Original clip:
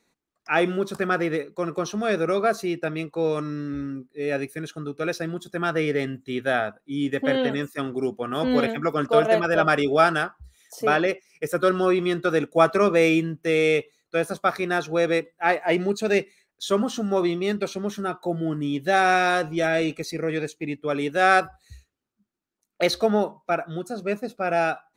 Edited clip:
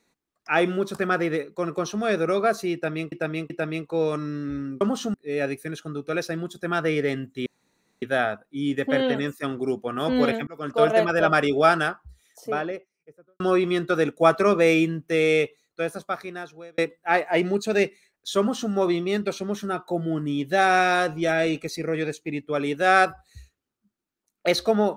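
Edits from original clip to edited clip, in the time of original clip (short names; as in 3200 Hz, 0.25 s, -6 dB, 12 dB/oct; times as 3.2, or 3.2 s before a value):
2.74–3.12 loop, 3 plays
6.37 insert room tone 0.56 s
8.82–9.21 fade in
10.17–11.75 studio fade out
13.72–15.13 fade out
16.74–17.07 copy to 4.05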